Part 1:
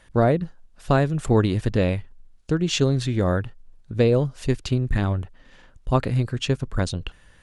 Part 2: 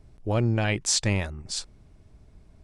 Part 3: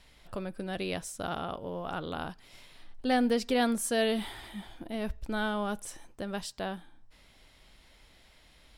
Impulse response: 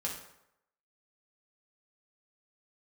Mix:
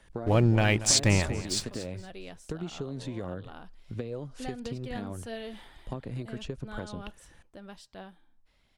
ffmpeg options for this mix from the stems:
-filter_complex "[0:a]acrossover=split=150|780[link_01][link_02][link_03];[link_01]acompressor=threshold=-37dB:ratio=4[link_04];[link_02]acompressor=threshold=-23dB:ratio=4[link_05];[link_03]acompressor=threshold=-38dB:ratio=4[link_06];[link_04][link_05][link_06]amix=inputs=3:normalize=0,volume=-5.5dB[link_07];[1:a]aeval=exprs='sgn(val(0))*max(abs(val(0))-0.00531,0)':channel_layout=same,volume=2dB,asplit=2[link_08][link_09];[link_09]volume=-14.5dB[link_10];[2:a]highshelf=frequency=9100:gain=-9,adelay=1350,volume=-10.5dB[link_11];[link_07][link_11]amix=inputs=2:normalize=0,aphaser=in_gain=1:out_gain=1:delay=4.7:decay=0.27:speed=1.5:type=triangular,acompressor=threshold=-32dB:ratio=6,volume=0dB[link_12];[link_10]aecho=0:1:234|468|702|936:1|0.25|0.0625|0.0156[link_13];[link_08][link_12][link_13]amix=inputs=3:normalize=0"

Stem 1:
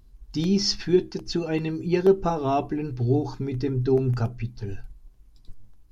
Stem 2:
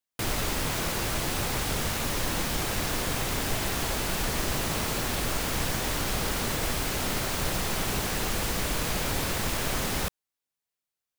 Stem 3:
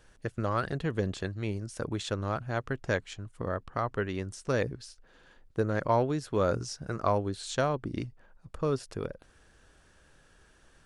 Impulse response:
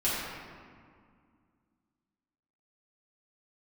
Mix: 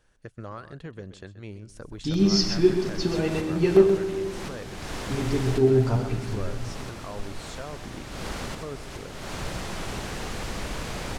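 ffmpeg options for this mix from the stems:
-filter_complex "[0:a]adelay=1700,volume=-3dB,asplit=3[link_01][link_02][link_03];[link_01]atrim=end=3.89,asetpts=PTS-STARTPTS,afade=type=out:start_time=3.886:duration=0.004:curve=hsin[link_04];[link_02]atrim=start=3.89:end=5.05,asetpts=PTS-STARTPTS,volume=0[link_05];[link_03]atrim=start=5.05,asetpts=PTS-STARTPTS,afade=type=in:duration=0.004:curve=hsin[link_06];[link_04][link_05][link_06]concat=n=3:v=0:a=1,asplit=3[link_07][link_08][link_09];[link_08]volume=-12dB[link_10];[link_09]volume=-5.5dB[link_11];[1:a]lowpass=7600,equalizer=frequency=5200:width=0.35:gain=-3,adelay=2000,volume=-3dB,asplit=2[link_12][link_13];[link_13]volume=-9dB[link_14];[2:a]alimiter=limit=-21dB:level=0:latency=1:release=259,volume=-6.5dB,asplit=3[link_15][link_16][link_17];[link_16]volume=-14dB[link_18];[link_17]apad=whole_len=581660[link_19];[link_12][link_19]sidechaincompress=threshold=-50dB:ratio=8:attack=28:release=249[link_20];[3:a]atrim=start_sample=2205[link_21];[link_10][link_21]afir=irnorm=-1:irlink=0[link_22];[link_11][link_14][link_18]amix=inputs=3:normalize=0,aecho=0:1:129:1[link_23];[link_07][link_20][link_15][link_22][link_23]amix=inputs=5:normalize=0"

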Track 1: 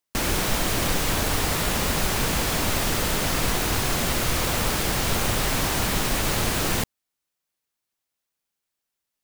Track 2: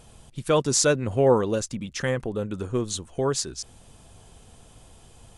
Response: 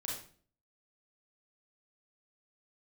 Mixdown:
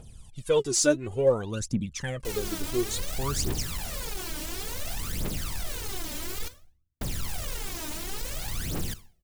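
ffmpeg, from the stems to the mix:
-filter_complex "[0:a]asoftclip=type=hard:threshold=-26dB,adelay=2100,volume=-10dB,asplit=3[link_01][link_02][link_03];[link_01]atrim=end=6.48,asetpts=PTS-STARTPTS,afade=type=out:start_time=6.476:duration=0.004:curve=hsin[link_04];[link_02]atrim=start=6.48:end=7.01,asetpts=PTS-STARTPTS,volume=0[link_05];[link_03]atrim=start=7.01,asetpts=PTS-STARTPTS,afade=type=in:duration=0.004:curve=hsin[link_06];[link_04][link_05][link_06]concat=n=3:v=0:a=1,asplit=2[link_07][link_08];[link_08]volume=-12dB[link_09];[1:a]volume=-5dB[link_10];[2:a]atrim=start_sample=2205[link_11];[link_09][link_11]afir=irnorm=-1:irlink=0[link_12];[link_07][link_10][link_12]amix=inputs=3:normalize=0,equalizer=frequency=1100:width_type=o:width=2.7:gain=-5.5,aphaser=in_gain=1:out_gain=1:delay=3.4:decay=0.73:speed=0.57:type=triangular"

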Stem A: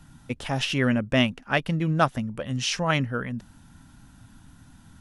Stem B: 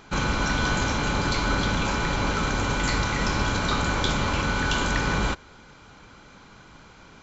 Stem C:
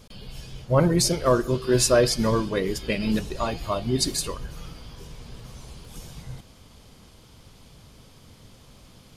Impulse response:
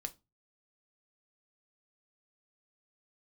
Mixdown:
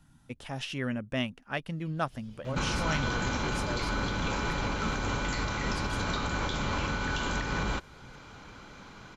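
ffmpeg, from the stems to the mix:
-filter_complex "[0:a]volume=-10dB,asplit=2[link_01][link_02];[1:a]adelay=2450,volume=0.5dB[link_03];[2:a]adelay=1750,volume=-14dB[link_04];[link_02]apad=whole_len=481349[link_05];[link_04][link_05]sidechaincompress=threshold=-40dB:ratio=8:attack=38:release=117[link_06];[link_03][link_06]amix=inputs=2:normalize=0,highshelf=frequency=9700:gain=-6,alimiter=limit=-21dB:level=0:latency=1:release=431,volume=0dB[link_07];[link_01][link_07]amix=inputs=2:normalize=0"

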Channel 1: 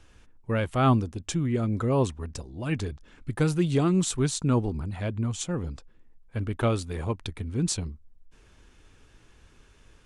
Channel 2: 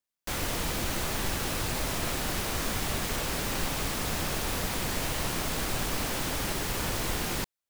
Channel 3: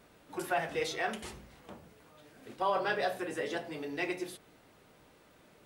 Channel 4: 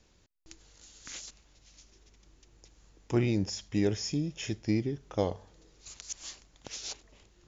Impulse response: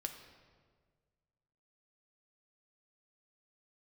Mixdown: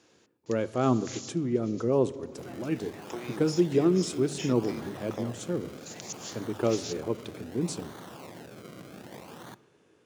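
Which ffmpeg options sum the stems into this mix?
-filter_complex "[0:a]equalizer=frequency=390:width=0.84:gain=12.5,volume=-12.5dB,asplit=2[link_01][link_02];[link_02]volume=-3.5dB[link_03];[1:a]acrusher=samples=34:mix=1:aa=0.000001:lfo=1:lforange=34:lforate=0.64,adelay=2100,volume=-15dB,asplit=2[link_04][link_05];[link_05]volume=-8.5dB[link_06];[2:a]adelay=1950,volume=-19dB[link_07];[3:a]highpass=360,acompressor=threshold=-38dB:ratio=6,volume=2.5dB[link_08];[4:a]atrim=start_sample=2205[link_09];[link_03][link_06]amix=inputs=2:normalize=0[link_10];[link_10][link_09]afir=irnorm=-1:irlink=0[link_11];[link_01][link_04][link_07][link_08][link_11]amix=inputs=5:normalize=0,highpass=frequency=110:width=0.5412,highpass=frequency=110:width=1.3066,bandreject=frequency=50:width_type=h:width=6,bandreject=frequency=100:width_type=h:width=6,bandreject=frequency=150:width_type=h:width=6"

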